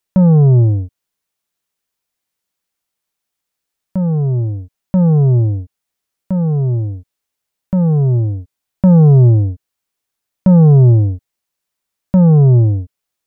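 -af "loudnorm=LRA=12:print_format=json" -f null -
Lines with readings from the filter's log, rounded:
"input_i" : "-12.0",
"input_tp" : "-4.9",
"input_lra" : "9.5",
"input_thresh" : "-22.7",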